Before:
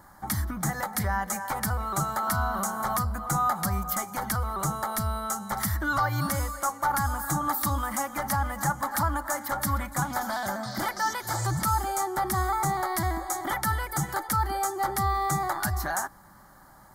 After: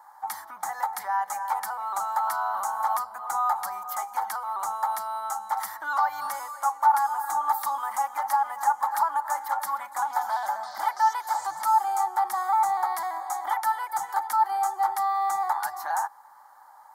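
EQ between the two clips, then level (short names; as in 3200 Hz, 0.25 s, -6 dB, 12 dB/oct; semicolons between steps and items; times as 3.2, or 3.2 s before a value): resonant high-pass 870 Hz, resonance Q 5.7; -6.5 dB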